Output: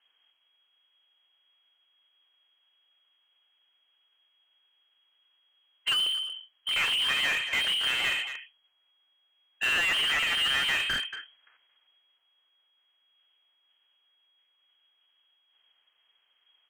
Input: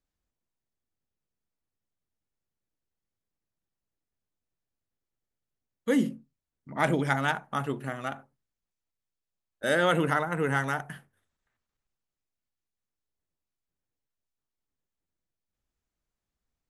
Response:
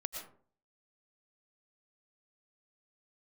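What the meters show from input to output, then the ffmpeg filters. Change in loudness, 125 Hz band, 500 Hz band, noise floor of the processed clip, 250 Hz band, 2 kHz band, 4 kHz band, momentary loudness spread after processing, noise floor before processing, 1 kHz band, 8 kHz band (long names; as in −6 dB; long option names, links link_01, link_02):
+2.5 dB, −19.5 dB, −17.0 dB, −72 dBFS, −20.5 dB, +4.5 dB, +17.5 dB, 12 LU, below −85 dBFS, −7.5 dB, +6.5 dB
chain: -filter_complex "[0:a]bandreject=frequency=60:width_type=h:width=6,bandreject=frequency=120:width_type=h:width=6,bandreject=frequency=180:width_type=h:width=6,bandreject=frequency=240:width_type=h:width=6,bandreject=frequency=300:width_type=h:width=6,bandreject=frequency=360:width_type=h:width=6,bandreject=frequency=420:width_type=h:width=6,afftdn=noise_reduction=13:noise_floor=-54,asplit=2[link_01][link_02];[link_02]acompressor=threshold=-37dB:ratio=10,volume=-1dB[link_03];[link_01][link_03]amix=inputs=2:normalize=0,alimiter=limit=-21dB:level=0:latency=1:release=336,acrusher=bits=6:mode=log:mix=0:aa=0.000001,lowpass=frequency=2800:width_type=q:width=0.5098,lowpass=frequency=2800:width_type=q:width=0.6013,lowpass=frequency=2800:width_type=q:width=0.9,lowpass=frequency=2800:width_type=q:width=2.563,afreqshift=-3300,asoftclip=type=hard:threshold=-27.5dB,asplit=2[link_04][link_05];[link_05]adelay=230,highpass=300,lowpass=3400,asoftclip=type=hard:threshold=-37dB,volume=-21dB[link_06];[link_04][link_06]amix=inputs=2:normalize=0,asplit=2[link_07][link_08];[link_08]highpass=frequency=720:poles=1,volume=27dB,asoftclip=type=tanh:threshold=-27dB[link_09];[link_07][link_09]amix=inputs=2:normalize=0,lowpass=frequency=2100:poles=1,volume=-6dB,volume=8dB"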